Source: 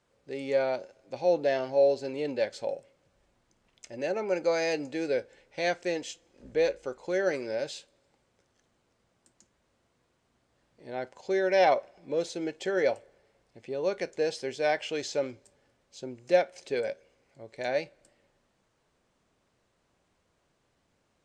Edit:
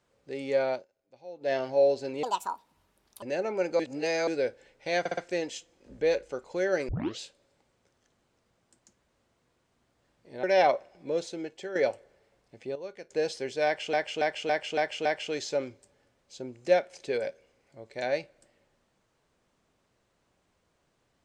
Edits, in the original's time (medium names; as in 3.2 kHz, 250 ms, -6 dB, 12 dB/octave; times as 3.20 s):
0.73–1.52 s: dip -19 dB, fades 0.12 s
2.23–3.94 s: speed 172%
4.51–4.99 s: reverse
5.71 s: stutter 0.06 s, 4 plays
7.42 s: tape start 0.31 s
10.97–11.46 s: delete
12.12–12.78 s: fade out, to -9.5 dB
13.78–14.13 s: gain -11.5 dB
14.68–14.96 s: loop, 6 plays